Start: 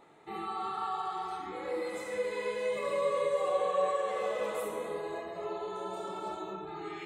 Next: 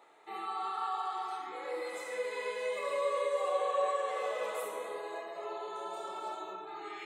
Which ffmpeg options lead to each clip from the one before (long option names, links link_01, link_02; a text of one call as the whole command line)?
ffmpeg -i in.wav -af "highpass=510" out.wav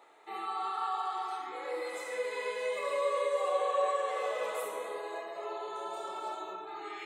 ffmpeg -i in.wav -af "equalizer=frequency=160:width=1.3:gain=-4,volume=1.5dB" out.wav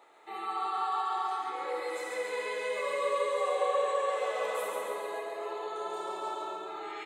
ffmpeg -i in.wav -af "aecho=1:1:139|278|417|556|695|834|973|1112:0.631|0.372|0.22|0.13|0.0765|0.0451|0.0266|0.0157" out.wav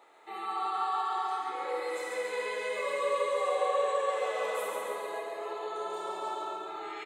ffmpeg -i in.wav -filter_complex "[0:a]asplit=2[link_01][link_02];[link_02]adelay=49,volume=-11.5dB[link_03];[link_01][link_03]amix=inputs=2:normalize=0" out.wav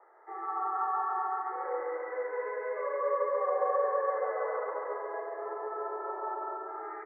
ffmpeg -i in.wav -af "asuperpass=centerf=800:order=20:qfactor=0.51" out.wav